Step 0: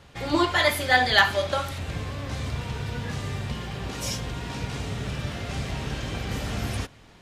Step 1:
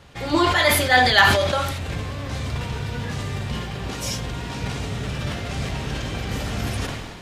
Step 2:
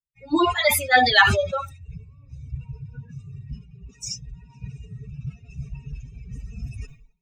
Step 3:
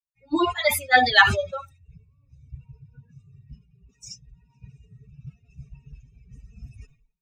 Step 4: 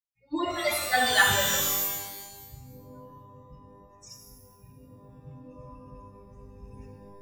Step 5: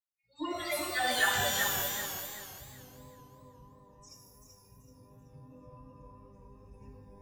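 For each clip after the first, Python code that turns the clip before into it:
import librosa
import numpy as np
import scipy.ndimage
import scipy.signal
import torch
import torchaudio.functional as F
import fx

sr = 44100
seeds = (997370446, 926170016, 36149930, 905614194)

y1 = fx.sustainer(x, sr, db_per_s=40.0)
y1 = F.gain(torch.from_numpy(y1), 2.5).numpy()
y2 = fx.bin_expand(y1, sr, power=3.0)
y2 = F.gain(torch.from_numpy(y2), 3.5).numpy()
y3 = fx.upward_expand(y2, sr, threshold_db=-38.0, expansion=1.5)
y3 = F.gain(torch.from_numpy(y3), 1.0).numpy()
y4 = fx.rev_shimmer(y3, sr, seeds[0], rt60_s=1.2, semitones=12, shimmer_db=-2, drr_db=2.5)
y4 = F.gain(torch.from_numpy(y4), -8.0).numpy()
y5 = fx.dispersion(y4, sr, late='lows', ms=82.0, hz=1400.0)
y5 = fx.echo_warbled(y5, sr, ms=383, feedback_pct=33, rate_hz=2.8, cents=65, wet_db=-5.5)
y5 = F.gain(torch.from_numpy(y5), -7.0).numpy()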